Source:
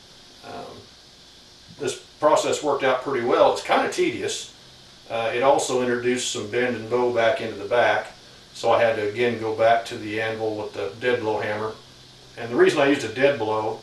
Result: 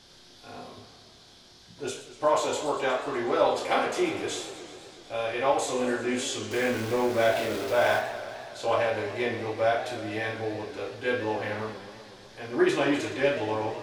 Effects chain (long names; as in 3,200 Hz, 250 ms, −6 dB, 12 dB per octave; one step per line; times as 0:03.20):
0:06.51–0:07.99: converter with a step at zero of −25.5 dBFS
flutter between parallel walls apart 4.8 metres, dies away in 0.26 s
feedback echo with a swinging delay time 123 ms, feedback 75%, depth 184 cents, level −13 dB
level −7 dB